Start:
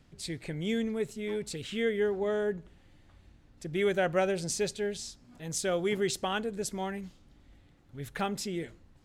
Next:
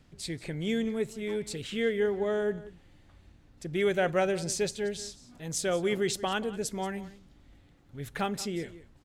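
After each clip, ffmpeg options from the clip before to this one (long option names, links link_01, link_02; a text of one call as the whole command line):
ffmpeg -i in.wav -af "aecho=1:1:181:0.141,volume=1dB" out.wav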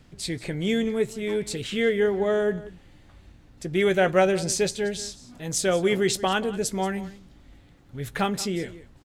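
ffmpeg -i in.wav -filter_complex "[0:a]asplit=2[link_01][link_02];[link_02]adelay=16,volume=-13dB[link_03];[link_01][link_03]amix=inputs=2:normalize=0,volume=6dB" out.wav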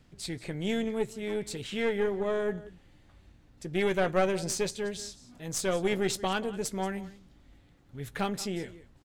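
ffmpeg -i in.wav -af "aeval=exprs='(tanh(4.47*val(0)+0.65)-tanh(0.65))/4.47':channel_layout=same,volume=-3dB" out.wav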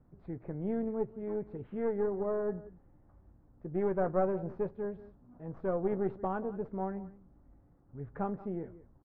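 ffmpeg -i in.wav -af "lowpass=frequency=1200:width=0.5412,lowpass=frequency=1200:width=1.3066,volume=-3dB" out.wav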